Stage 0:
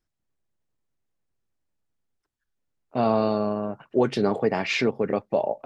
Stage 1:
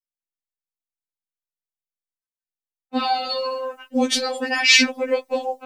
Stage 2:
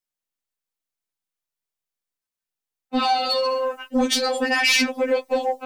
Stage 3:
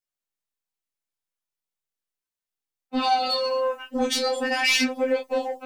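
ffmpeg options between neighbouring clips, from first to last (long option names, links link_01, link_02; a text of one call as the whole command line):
ffmpeg -i in.wav -af "agate=range=-33dB:threshold=-45dB:ratio=3:detection=peak,crystalizer=i=9.5:c=0,afftfilt=real='re*3.46*eq(mod(b,12),0)':imag='im*3.46*eq(mod(b,12),0)':win_size=2048:overlap=0.75,volume=3dB" out.wav
ffmpeg -i in.wav -filter_complex "[0:a]asplit=2[link_01][link_02];[link_02]alimiter=limit=-11dB:level=0:latency=1:release=314,volume=-1.5dB[link_03];[link_01][link_03]amix=inputs=2:normalize=0,acompressor=threshold=-19dB:ratio=1.5,asoftclip=type=tanh:threshold=-12.5dB" out.wav
ffmpeg -i in.wav -af "flanger=delay=22.5:depth=3.1:speed=0.37" out.wav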